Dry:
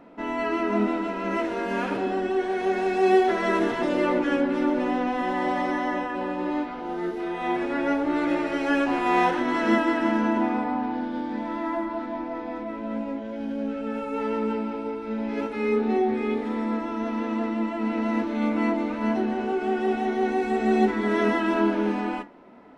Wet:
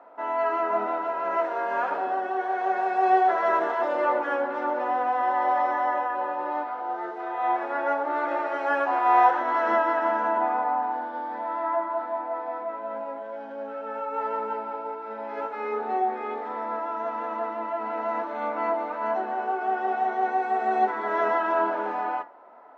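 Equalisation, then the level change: resonant high-pass 710 Hz, resonance Q 1.7; air absorption 79 m; resonant high shelf 1900 Hz -7 dB, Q 1.5; 0.0 dB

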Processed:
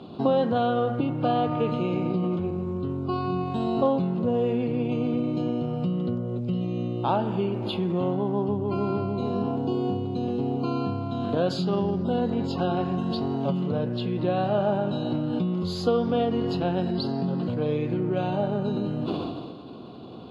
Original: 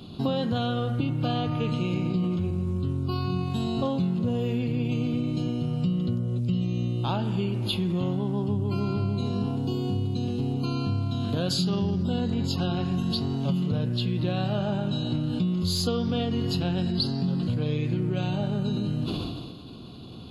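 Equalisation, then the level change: band-pass 640 Hz, Q 0.83; +8.0 dB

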